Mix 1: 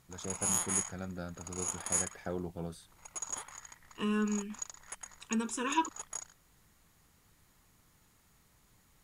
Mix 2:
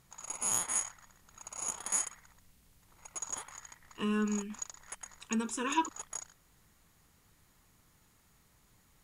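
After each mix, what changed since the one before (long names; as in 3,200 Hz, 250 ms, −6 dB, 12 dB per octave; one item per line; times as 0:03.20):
first voice: muted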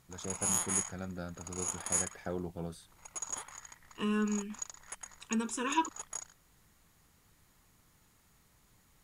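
first voice: unmuted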